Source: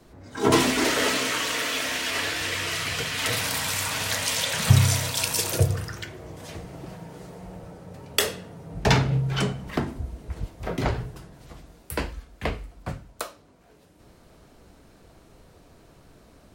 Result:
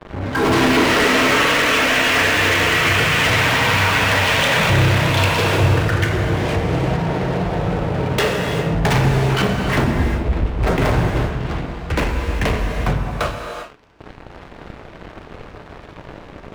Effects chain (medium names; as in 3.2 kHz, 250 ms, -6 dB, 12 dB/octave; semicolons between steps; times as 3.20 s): low-pass 2.9 kHz 24 dB/octave; in parallel at +3 dB: compression, threshold -38 dBFS, peak gain reduction 25 dB; on the sum: waveshaping leveller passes 5; saturation -11 dBFS, distortion -14 dB; gated-style reverb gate 420 ms flat, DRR 2.5 dB; trim -3.5 dB